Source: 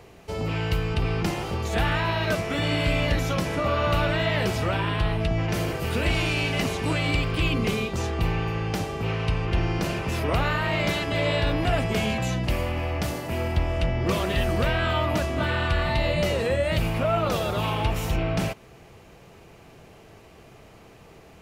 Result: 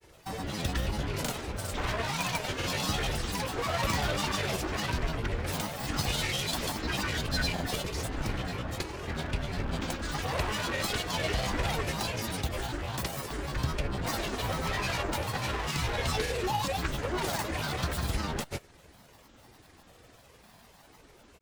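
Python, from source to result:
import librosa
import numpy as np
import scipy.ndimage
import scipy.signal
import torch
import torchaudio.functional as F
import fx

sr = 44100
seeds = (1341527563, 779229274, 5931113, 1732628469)

y = fx.lower_of_two(x, sr, delay_ms=1.9)
y = fx.high_shelf(y, sr, hz=4700.0, db=10.0)
y = fx.granulator(y, sr, seeds[0], grain_ms=100.0, per_s=20.0, spray_ms=100.0, spread_st=12)
y = y * 10.0 ** (-5.0 / 20.0)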